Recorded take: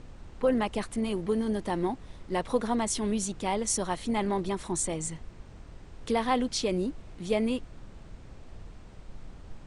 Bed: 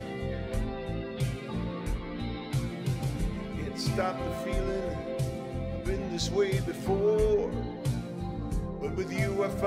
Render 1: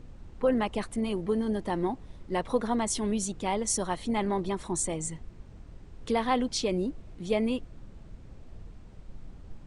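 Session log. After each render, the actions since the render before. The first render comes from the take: denoiser 6 dB, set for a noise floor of -49 dBFS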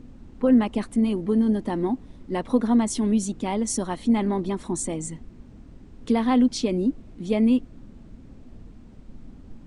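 bell 250 Hz +12 dB 0.71 oct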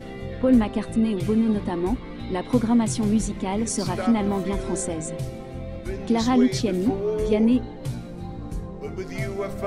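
add bed 0 dB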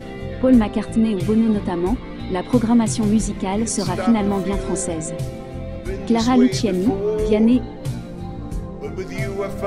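gain +4 dB

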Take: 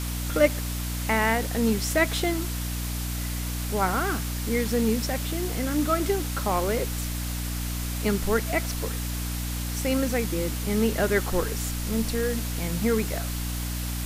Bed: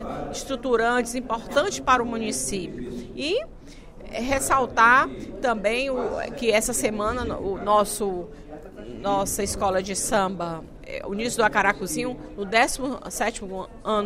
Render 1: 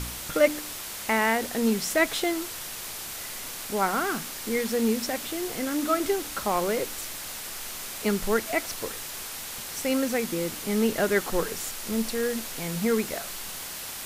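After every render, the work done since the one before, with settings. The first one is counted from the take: de-hum 60 Hz, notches 5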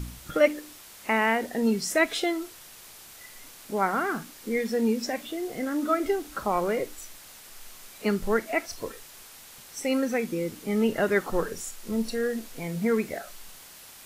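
noise print and reduce 11 dB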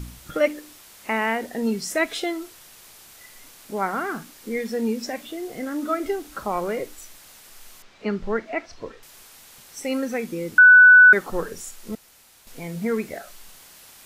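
7.82–9.03 air absorption 160 m; 10.58–11.13 bleep 1490 Hz -6.5 dBFS; 11.95–12.47 room tone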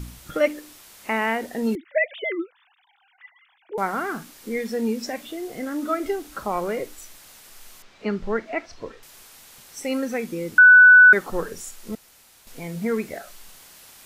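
1.75–3.78 sine-wave speech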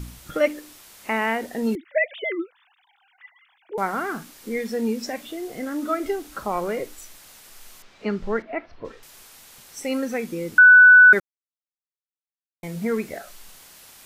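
8.42–8.85 air absorption 350 m; 11.2–12.63 mute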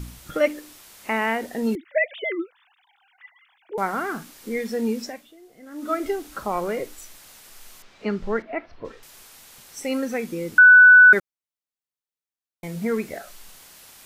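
5–5.93 dip -17 dB, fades 0.37 s quadratic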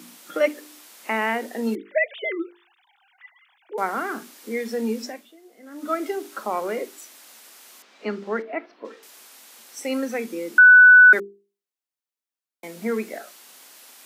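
steep high-pass 210 Hz 48 dB/oct; notches 50/100/150/200/250/300/350/400/450 Hz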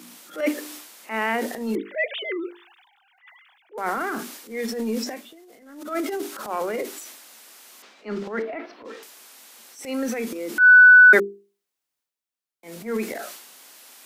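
transient shaper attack -11 dB, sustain +8 dB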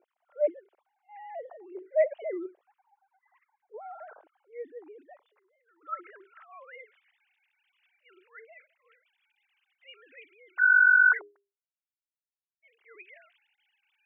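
sine-wave speech; band-pass sweep 620 Hz -> 2600 Hz, 4.07–7.51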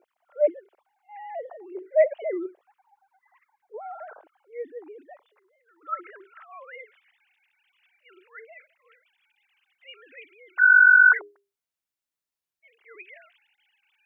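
gain +5 dB

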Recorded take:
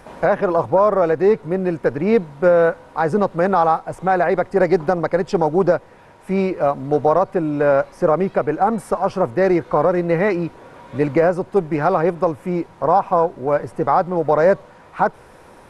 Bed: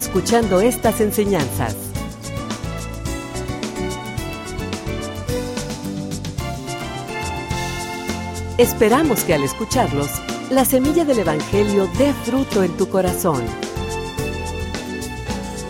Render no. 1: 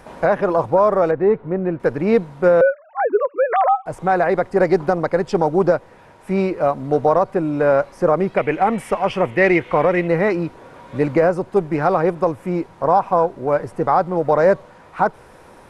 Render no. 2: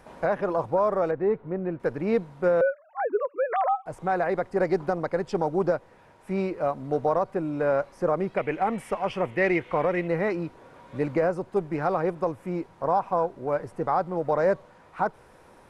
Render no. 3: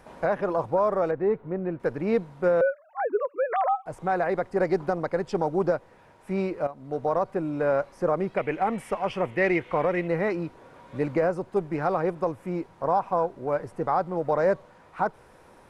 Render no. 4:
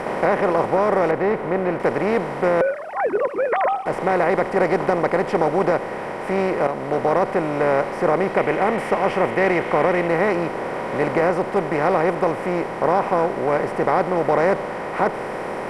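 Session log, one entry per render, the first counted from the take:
1.11–1.8 air absorption 470 m; 2.61–3.86 sine-wave speech; 8.37–10.08 band shelf 2500 Hz +13.5 dB 1 oct
gain -8.5 dB
6.67–7.22 fade in, from -13.5 dB
per-bin compression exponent 0.4

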